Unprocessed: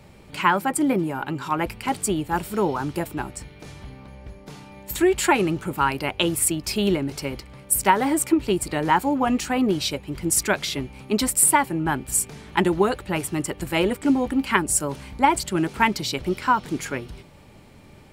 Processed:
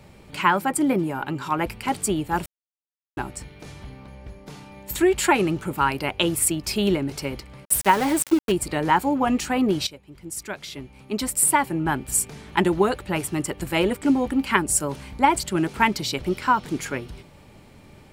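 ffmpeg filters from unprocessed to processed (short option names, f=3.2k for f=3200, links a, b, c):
-filter_complex "[0:a]asettb=1/sr,asplit=3[a][b][c];[a]atrim=end=7.654[d];[b]atrim=start=7.65:end=8.52,asetpts=PTS-STARTPTS,afade=t=in:d=0.004:c=qsin,afade=t=out:st=0.866:d=0.004:c=qsin,aeval=exprs='val(0)*gte(abs(val(0)),0.0447)':c=same[e];[c]atrim=start=8.516[f];[d][e]acrossfade=d=0.004:c1=hsin:c2=qsin[g];[g][f]acrossfade=d=0.004:c1=qsin:c2=hsin,asplit=4[h][i][j][k];[h]atrim=end=2.46,asetpts=PTS-STARTPTS,afade=t=out:st=2.456:d=0.004:c=hsin[l];[i]atrim=start=2.46:end=3.17,asetpts=PTS-STARTPTS,volume=0[m];[j]atrim=start=3.17:end=9.87,asetpts=PTS-STARTPTS,afade=t=in:d=0.004:c=hsin,afade=t=out:st=6.696:d=0.004:c=hsin:silence=0.188365[n];[k]atrim=start=9.87,asetpts=PTS-STARTPTS,afade=t=in:d=1.85:c=qua:silence=0.188365[o];[l][m][n][o]concat=n=4:v=0:a=1"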